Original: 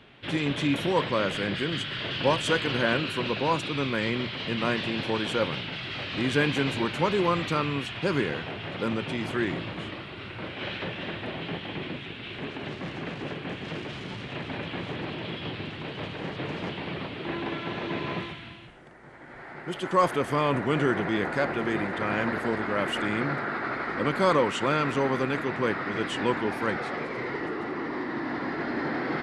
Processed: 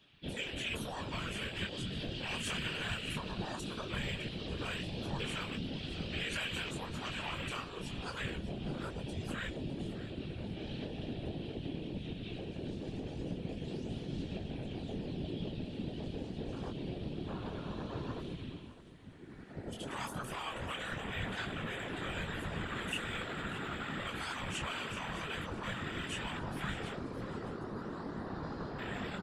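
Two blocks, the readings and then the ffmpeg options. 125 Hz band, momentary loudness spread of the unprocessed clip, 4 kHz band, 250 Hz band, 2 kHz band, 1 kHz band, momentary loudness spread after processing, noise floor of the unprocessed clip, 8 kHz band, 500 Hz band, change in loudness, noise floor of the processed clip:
-7.0 dB, 11 LU, -8.0 dB, -11.0 dB, -11.0 dB, -14.0 dB, 5 LU, -42 dBFS, -3.5 dB, -15.0 dB, -11.0 dB, -46 dBFS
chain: -filter_complex "[0:a]equalizer=f=200:t=o:w=2.6:g=10,afwtdn=0.0316,afftfilt=real='re*lt(hypot(re,im),0.398)':imag='im*lt(hypot(re,im),0.398)':win_size=1024:overlap=0.75,equalizer=f=3.4k:t=o:w=1.6:g=5,bandreject=f=2.1k:w=10,acrossover=split=190|5000[a][b][c];[b]acompressor=threshold=-36dB:ratio=10[d];[c]aphaser=in_gain=1:out_gain=1:delay=3.7:decay=0.56:speed=0.14:type=sinusoidal[e];[a][d][e]amix=inputs=3:normalize=0,crystalizer=i=7:c=0,flanger=delay=17.5:depth=6.8:speed=0.98,afftfilt=real='hypot(re,im)*cos(2*PI*random(0))':imag='hypot(re,im)*sin(2*PI*random(1))':win_size=512:overlap=0.75,aecho=1:1:607|1214|1821:0.178|0.064|0.023,volume=2dB"

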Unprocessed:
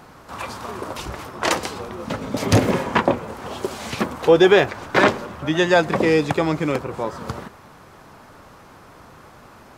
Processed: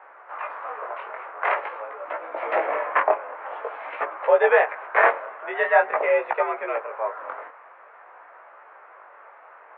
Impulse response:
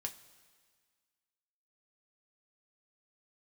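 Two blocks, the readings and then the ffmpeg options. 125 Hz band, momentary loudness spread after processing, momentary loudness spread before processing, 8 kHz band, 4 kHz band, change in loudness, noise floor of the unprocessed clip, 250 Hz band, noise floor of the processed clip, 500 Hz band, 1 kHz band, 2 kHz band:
under -40 dB, 16 LU, 16 LU, under -40 dB, under -15 dB, -3.5 dB, -46 dBFS, -24.0 dB, -49 dBFS, -3.5 dB, +0.5 dB, -0.5 dB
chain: -af "flanger=delay=15.5:depth=7.7:speed=0.47,highpass=f=480:t=q:w=0.5412,highpass=f=480:t=q:w=1.307,lowpass=f=2.2k:t=q:w=0.5176,lowpass=f=2.2k:t=q:w=0.7071,lowpass=f=2.2k:t=q:w=1.932,afreqshift=67,volume=3dB"

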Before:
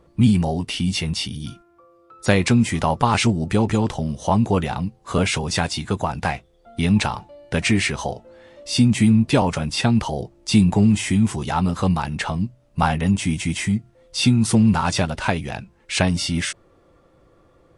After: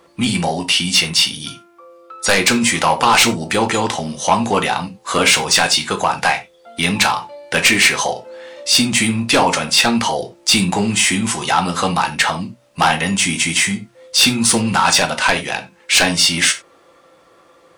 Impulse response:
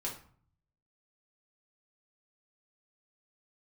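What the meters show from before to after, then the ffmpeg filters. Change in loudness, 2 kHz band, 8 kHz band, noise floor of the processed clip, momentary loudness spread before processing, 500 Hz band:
+5.5 dB, +11.0 dB, +12.5 dB, -51 dBFS, 12 LU, +4.5 dB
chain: -filter_complex "[0:a]highpass=f=1.3k:p=1,aeval=exprs='0.631*sin(PI/2*3.98*val(0)/0.631)':c=same,asplit=2[a][b];[1:a]atrim=start_sample=2205,atrim=end_sample=4410[c];[b][c]afir=irnorm=-1:irlink=0,volume=-2dB[d];[a][d]amix=inputs=2:normalize=0,volume=-6dB"

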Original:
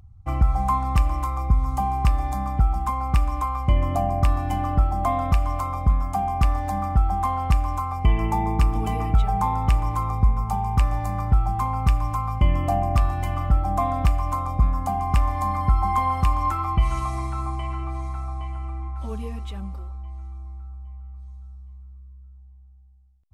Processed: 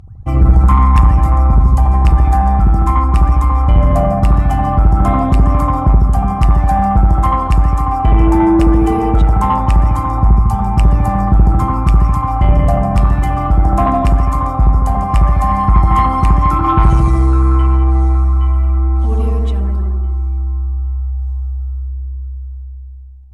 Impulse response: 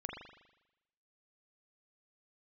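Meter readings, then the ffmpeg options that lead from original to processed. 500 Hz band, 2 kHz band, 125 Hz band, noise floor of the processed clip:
+12.0 dB, +8.0 dB, +11.5 dB, -25 dBFS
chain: -filter_complex "[0:a]aphaser=in_gain=1:out_gain=1:delay=3.1:decay=0.32:speed=0.18:type=triangular,equalizer=f=230:w=0.51:g=5[a];[1:a]atrim=start_sample=2205,afade=t=out:st=0.25:d=0.01,atrim=end_sample=11466,asetrate=23373,aresample=44100[b];[a][b]afir=irnorm=-1:irlink=0,acontrast=86,volume=-1dB"

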